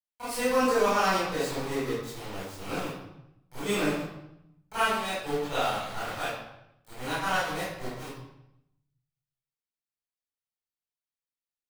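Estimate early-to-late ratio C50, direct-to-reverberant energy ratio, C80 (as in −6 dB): −3.5 dB, −13.5 dB, 2.0 dB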